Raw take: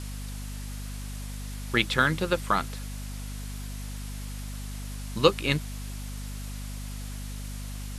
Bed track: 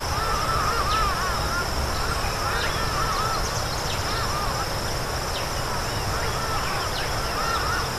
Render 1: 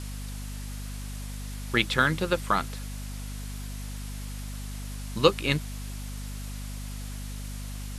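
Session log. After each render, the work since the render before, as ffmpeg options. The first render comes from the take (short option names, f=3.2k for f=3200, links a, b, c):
-af anull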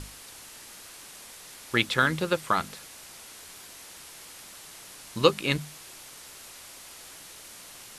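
-af "bandreject=f=50:t=h:w=6,bandreject=f=100:t=h:w=6,bandreject=f=150:t=h:w=6,bandreject=f=200:t=h:w=6,bandreject=f=250:t=h:w=6"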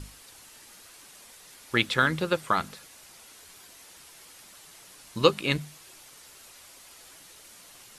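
-af "afftdn=nr=6:nf=-47"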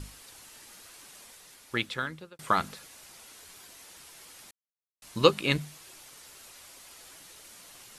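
-filter_complex "[0:a]asplit=4[a][b][c][d];[a]atrim=end=2.39,asetpts=PTS-STARTPTS,afade=t=out:st=1.2:d=1.19[e];[b]atrim=start=2.39:end=4.51,asetpts=PTS-STARTPTS,afade=t=in:d=0.004:c=hsin,afade=t=out:st=2.116:d=0.004:c=hsin[f];[c]atrim=start=4.51:end=5.02,asetpts=PTS-STARTPTS,volume=0[g];[d]atrim=start=5.02,asetpts=PTS-STARTPTS,afade=t=in:d=0.004:c=hsin[h];[e][f][g][h]concat=n=4:v=0:a=1"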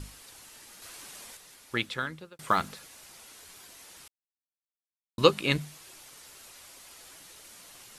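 -filter_complex "[0:a]asettb=1/sr,asplit=3[a][b][c];[a]atrim=end=2.264[d];[b]atrim=start=2.26:end=3.22,asetpts=PTS-STARTPTS,afade=t=in:d=0.004:c=qsin,afade=t=out:st=0.956:d=0.004:c=qsin,acrusher=bits=8:mode=log:mix=0:aa=0.000001[e];[c]atrim=start=3.216[f];[d][e]acrossfade=d=0.004:c1=hsin:c2=qsin[g];[g][f]acrossfade=d=0.004:c1=qsin:c2=hsin,asplit=5[h][i][j][k][l];[h]atrim=end=0.822[m];[i]atrim=start=0.818:end=1.372,asetpts=PTS-STARTPTS,volume=4.5dB[n];[j]atrim=start=1.368:end=4.08,asetpts=PTS-STARTPTS,afade=t=out:st=2.708:d=0.004:c=hsin[o];[k]atrim=start=4.08:end=5.18,asetpts=PTS-STARTPTS,volume=0[p];[l]atrim=start=5.18,asetpts=PTS-STARTPTS,afade=t=in:d=0.004:c=hsin[q];[m][n]acrossfade=d=0.004:c1=hsin:c2=hsin[r];[o][p][q]concat=n=3:v=0:a=1[s];[r][s]acrossfade=d=0.004:c1=hsin:c2=hsin"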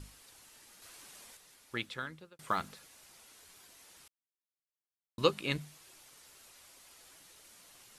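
-af "volume=-7.5dB"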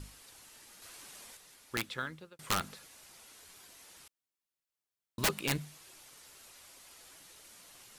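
-filter_complex "[0:a]asplit=2[a][b];[b]acrusher=bits=4:mode=log:mix=0:aa=0.000001,volume=-10.5dB[c];[a][c]amix=inputs=2:normalize=0,aeval=exprs='(mod(12.6*val(0)+1,2)-1)/12.6':c=same"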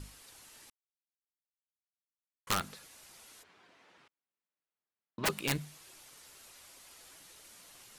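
-filter_complex "[0:a]asplit=3[a][b][c];[a]afade=t=out:st=3.42:d=0.02[d];[b]highpass=150,lowpass=2.3k,afade=t=in:st=3.42:d=0.02,afade=t=out:st=5.25:d=0.02[e];[c]afade=t=in:st=5.25:d=0.02[f];[d][e][f]amix=inputs=3:normalize=0,asplit=3[g][h][i];[g]atrim=end=0.7,asetpts=PTS-STARTPTS,afade=t=out:st=0.696:d=0.004:c=hsin[j];[h]atrim=start=0.7:end=2.47,asetpts=PTS-STARTPTS,volume=0[k];[i]atrim=start=2.47,asetpts=PTS-STARTPTS,afade=t=in:d=0.004:c=hsin[l];[j][k][l]concat=n=3:v=0:a=1"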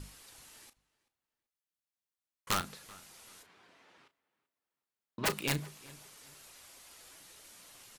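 -filter_complex "[0:a]asplit=2[a][b];[b]adelay=34,volume=-12dB[c];[a][c]amix=inputs=2:normalize=0,asplit=2[d][e];[e]adelay=384,lowpass=f=3.3k:p=1,volume=-21dB,asplit=2[f][g];[g]adelay=384,lowpass=f=3.3k:p=1,volume=0.3[h];[d][f][h]amix=inputs=3:normalize=0"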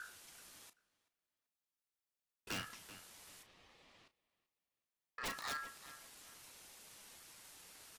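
-af "aeval=exprs='val(0)*sin(2*PI*1500*n/s)':c=same,asoftclip=type=tanh:threshold=-37.5dB"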